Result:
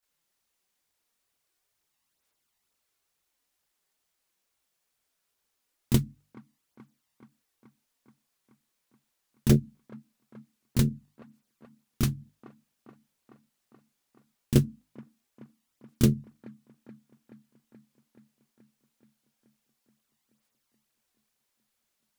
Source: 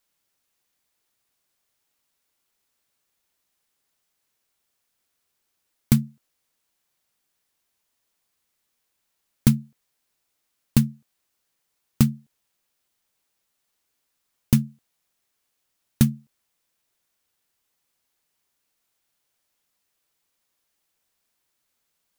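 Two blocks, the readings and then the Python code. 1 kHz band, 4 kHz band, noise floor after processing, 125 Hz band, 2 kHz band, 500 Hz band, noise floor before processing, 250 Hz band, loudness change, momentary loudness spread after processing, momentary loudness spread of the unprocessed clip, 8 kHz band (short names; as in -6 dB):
-2.5 dB, -2.5 dB, -80 dBFS, -3.0 dB, -3.0 dB, +7.0 dB, -77 dBFS, -4.5 dB, -4.5 dB, 12 LU, 9 LU, -4.0 dB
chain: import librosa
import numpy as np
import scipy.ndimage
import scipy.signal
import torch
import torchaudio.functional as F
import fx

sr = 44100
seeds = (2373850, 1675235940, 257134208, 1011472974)

p1 = fx.hum_notches(x, sr, base_hz=50, count=6)
p2 = fx.chorus_voices(p1, sr, voices=2, hz=1.1, base_ms=27, depth_ms=3.0, mix_pct=70)
p3 = p2 + fx.echo_wet_bandpass(p2, sr, ms=428, feedback_pct=70, hz=670.0, wet_db=-13.5, dry=0)
y = fx.doppler_dist(p3, sr, depth_ms=0.86)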